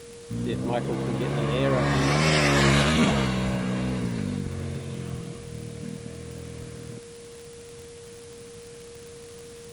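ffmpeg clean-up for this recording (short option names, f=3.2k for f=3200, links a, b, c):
-af "adeclick=t=4,bandreject=f=470:w=30,afwtdn=0.004"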